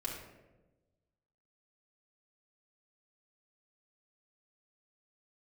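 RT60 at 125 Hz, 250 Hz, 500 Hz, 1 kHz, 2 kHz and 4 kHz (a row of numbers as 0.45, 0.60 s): 1.6, 1.4, 1.3, 0.90, 0.80, 0.60 s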